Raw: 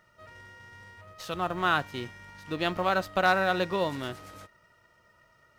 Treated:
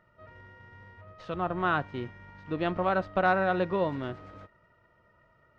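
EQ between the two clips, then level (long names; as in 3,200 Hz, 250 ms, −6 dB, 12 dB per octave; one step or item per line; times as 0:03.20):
head-to-tape spacing loss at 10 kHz 36 dB
notch filter 820 Hz, Q 26
+2.5 dB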